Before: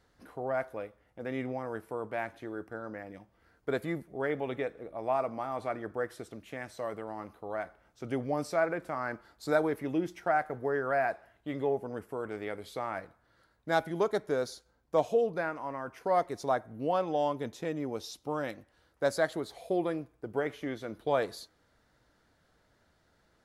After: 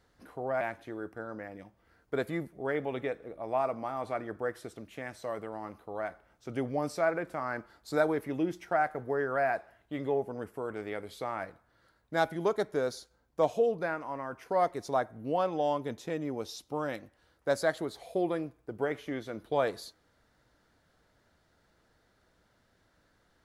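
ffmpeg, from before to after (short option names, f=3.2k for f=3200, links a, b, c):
-filter_complex "[0:a]asplit=2[a][b];[a]atrim=end=0.612[c];[b]atrim=start=2.158[d];[c][d]acrossfade=d=0.004:c1=hsin:c2=hsin"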